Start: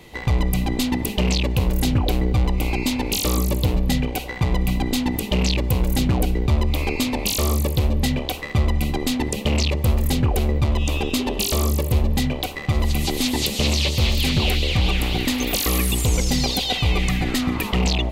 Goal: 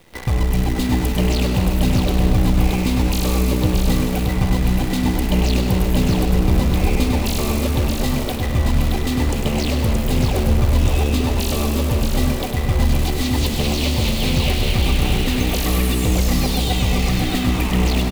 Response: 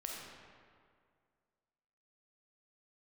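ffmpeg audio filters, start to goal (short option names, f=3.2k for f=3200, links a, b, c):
-filter_complex "[0:a]highshelf=f=2.3k:g=-6,acrusher=bits=6:dc=4:mix=0:aa=0.000001,aecho=1:1:625:0.596,asplit=2[a][b];[1:a]atrim=start_sample=2205,adelay=99[c];[b][c]afir=irnorm=-1:irlink=0,volume=-3.5dB[d];[a][d]amix=inputs=2:normalize=0"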